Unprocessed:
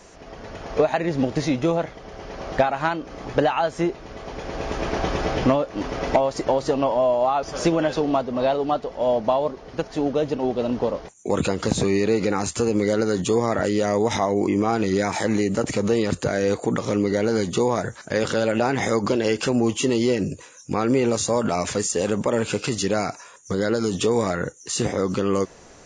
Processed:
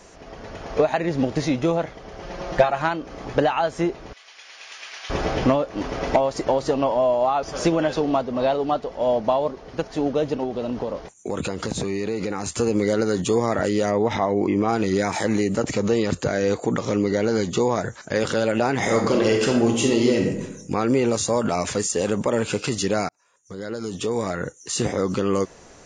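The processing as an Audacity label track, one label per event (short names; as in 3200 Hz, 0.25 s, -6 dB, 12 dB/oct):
2.220000	2.820000	comb 5.7 ms
4.130000	5.100000	Chebyshev high-pass 2500 Hz
10.430000	12.590000	compressor 3:1, threshold -23 dBFS
13.900000	14.670000	LPF 2900 Hz -> 4600 Hz
15.570000	18.160000	steep low-pass 8200 Hz 48 dB/oct
18.770000	20.300000	reverb throw, RT60 0.93 s, DRR 1.5 dB
23.090000	24.750000	fade in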